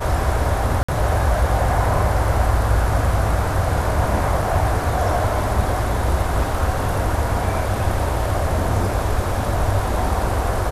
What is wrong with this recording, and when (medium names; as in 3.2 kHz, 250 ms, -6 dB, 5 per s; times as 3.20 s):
0.83–0.89 s: dropout 55 ms